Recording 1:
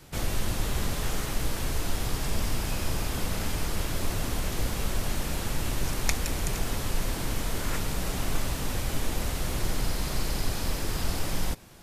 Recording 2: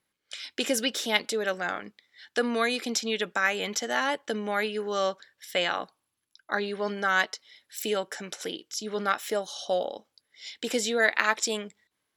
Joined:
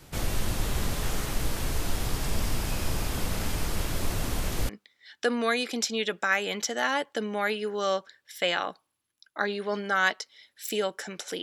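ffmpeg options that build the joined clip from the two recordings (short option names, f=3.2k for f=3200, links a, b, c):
-filter_complex "[0:a]apad=whole_dur=11.42,atrim=end=11.42,atrim=end=4.692[a];[1:a]atrim=start=1.818:end=8.55[b];[a][b]acrossfade=d=0.004:c1=hsin:c2=hsin"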